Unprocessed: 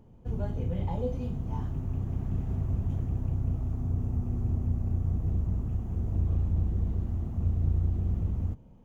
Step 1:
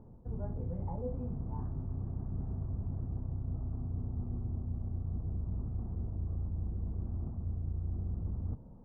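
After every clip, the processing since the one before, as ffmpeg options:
-af "lowpass=f=1.3k:w=0.5412,lowpass=f=1.3k:w=1.3066,areverse,acompressor=threshold=-36dB:ratio=4,areverse,volume=1.5dB"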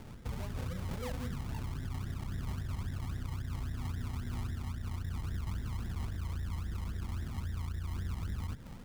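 -af "acrusher=samples=34:mix=1:aa=0.000001:lfo=1:lforange=20.4:lforate=3.7,alimiter=level_in=12dB:limit=-24dB:level=0:latency=1:release=182,volume=-12dB,volume=5.5dB"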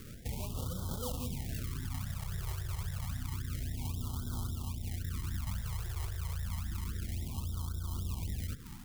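-af "crystalizer=i=2:c=0,afftfilt=real='re*(1-between(b*sr/1024,230*pow(2200/230,0.5+0.5*sin(2*PI*0.29*pts/sr))/1.41,230*pow(2200/230,0.5+0.5*sin(2*PI*0.29*pts/sr))*1.41))':imag='im*(1-between(b*sr/1024,230*pow(2200/230,0.5+0.5*sin(2*PI*0.29*pts/sr))/1.41,230*pow(2200/230,0.5+0.5*sin(2*PI*0.29*pts/sr))*1.41))':win_size=1024:overlap=0.75"

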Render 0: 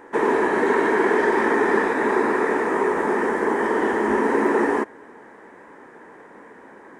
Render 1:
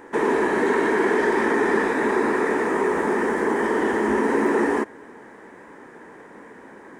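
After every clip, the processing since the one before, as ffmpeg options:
-filter_complex "[0:a]equalizer=f=890:t=o:w=3:g=-5,asplit=2[a][b];[b]alimiter=limit=-21.5dB:level=0:latency=1,volume=-3dB[c];[a][c]amix=inputs=2:normalize=0"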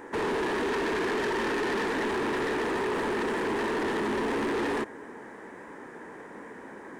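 -af "asoftclip=type=tanh:threshold=-26.5dB"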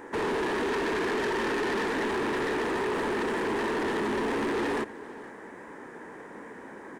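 -af "aecho=1:1:468:0.0891"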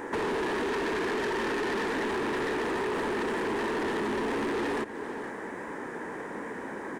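-af "acompressor=threshold=-37dB:ratio=4,volume=6.5dB"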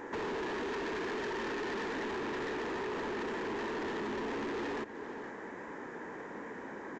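-filter_complex "[0:a]aresample=16000,aresample=44100,asplit=2[a][b];[b]volume=30.5dB,asoftclip=hard,volume=-30.5dB,volume=-9dB[c];[a][c]amix=inputs=2:normalize=0,volume=-9dB"

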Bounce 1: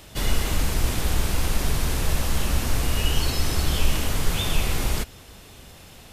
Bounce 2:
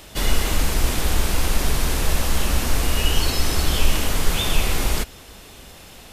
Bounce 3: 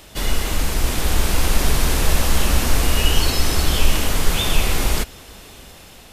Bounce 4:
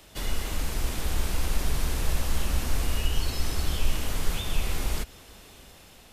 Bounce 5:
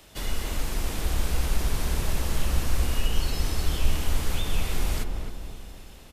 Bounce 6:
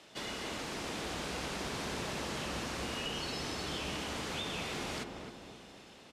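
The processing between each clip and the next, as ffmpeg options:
-af "equalizer=f=110:t=o:w=1.3:g=-6,volume=4dB"
-af "dynaudnorm=f=420:g=5:m=11.5dB,volume=-1dB"
-filter_complex "[0:a]acrossover=split=160[a][b];[b]acompressor=threshold=-24dB:ratio=6[c];[a][c]amix=inputs=2:normalize=0,volume=-8.5dB"
-filter_complex "[0:a]asplit=2[a][b];[b]adelay=265,lowpass=f=1.1k:p=1,volume=-4dB,asplit=2[c][d];[d]adelay=265,lowpass=f=1.1k:p=1,volume=0.5,asplit=2[e][f];[f]adelay=265,lowpass=f=1.1k:p=1,volume=0.5,asplit=2[g][h];[h]adelay=265,lowpass=f=1.1k:p=1,volume=0.5,asplit=2[i][j];[j]adelay=265,lowpass=f=1.1k:p=1,volume=0.5,asplit=2[k][l];[l]adelay=265,lowpass=f=1.1k:p=1,volume=0.5[m];[a][c][e][g][i][k][m]amix=inputs=7:normalize=0"
-af "highpass=190,lowpass=6.2k,volume=-2.5dB"

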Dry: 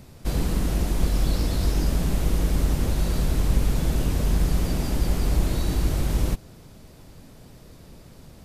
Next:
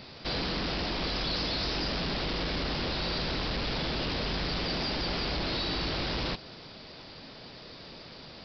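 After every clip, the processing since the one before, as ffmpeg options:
-af "aemphasis=mode=production:type=riaa,aresample=11025,asoftclip=type=tanh:threshold=-34dB,aresample=44100,volume=6dB"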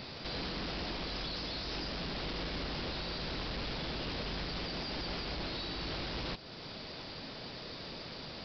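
-af "alimiter=level_in=10dB:limit=-24dB:level=0:latency=1:release=357,volume=-10dB,volume=2dB"

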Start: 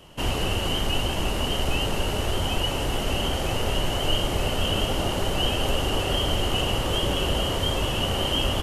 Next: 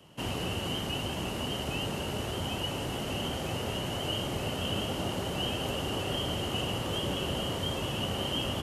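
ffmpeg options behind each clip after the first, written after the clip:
-filter_complex "[0:a]acrossover=split=250|1600[a][b][c];[a]acontrast=47[d];[d][b][c]amix=inputs=3:normalize=0,highpass=120,volume=-7.5dB"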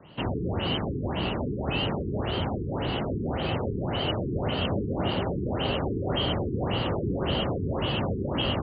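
-af "afftfilt=real='re*lt(b*sr/1024,440*pow(4900/440,0.5+0.5*sin(2*PI*1.8*pts/sr)))':imag='im*lt(b*sr/1024,440*pow(4900/440,0.5+0.5*sin(2*PI*1.8*pts/sr)))':win_size=1024:overlap=0.75,volume=6dB"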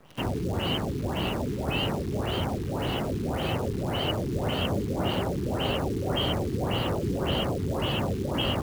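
-af "acrusher=bits=8:dc=4:mix=0:aa=0.000001"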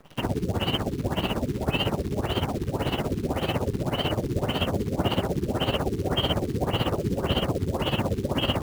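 -af "tremolo=f=16:d=0.76,volume=5dB"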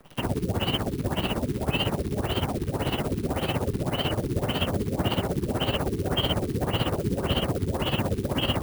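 -filter_complex "[0:a]acrossover=split=260|1500[a][b][c];[b]volume=26dB,asoftclip=hard,volume=-26dB[d];[c]aexciter=amount=1.3:drive=7.1:freq=9.1k[e];[a][d][e]amix=inputs=3:normalize=0"

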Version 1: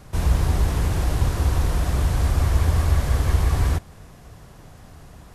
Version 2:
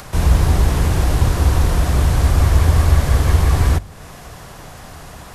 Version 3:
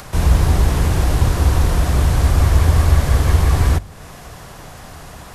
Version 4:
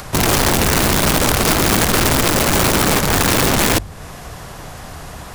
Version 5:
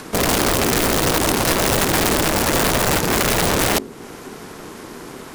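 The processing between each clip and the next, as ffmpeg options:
-filter_complex "[0:a]bandreject=f=50:t=h:w=6,bandreject=f=100:t=h:w=6,acrossover=split=530[a][b];[b]acompressor=mode=upward:threshold=-38dB:ratio=2.5[c];[a][c]amix=inputs=2:normalize=0,volume=6.5dB"
-af anull
-af "aeval=exprs='0.891*(cos(1*acos(clip(val(0)/0.891,-1,1)))-cos(1*PI/2))+0.0355*(cos(6*acos(clip(val(0)/0.891,-1,1)))-cos(6*PI/2))':c=same,aeval=exprs='(mod(4.73*val(0)+1,2)-1)/4.73':c=same,volume=3.5dB"
-af "aeval=exprs='val(0)*sin(2*PI*320*n/s)':c=same"

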